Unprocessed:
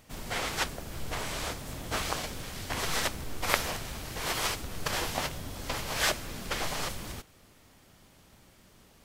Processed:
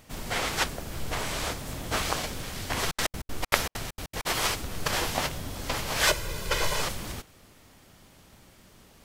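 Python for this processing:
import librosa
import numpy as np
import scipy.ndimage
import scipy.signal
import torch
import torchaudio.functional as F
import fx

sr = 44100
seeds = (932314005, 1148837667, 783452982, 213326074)

y = fx.step_gate(x, sr, bpm=196, pattern='x.x.xx.xx.xx.', floor_db=-60.0, edge_ms=4.5, at=(2.84, 4.25), fade=0.02)
y = fx.comb(y, sr, ms=2.0, depth=0.73, at=(6.07, 6.82))
y = F.gain(torch.from_numpy(y), 3.5).numpy()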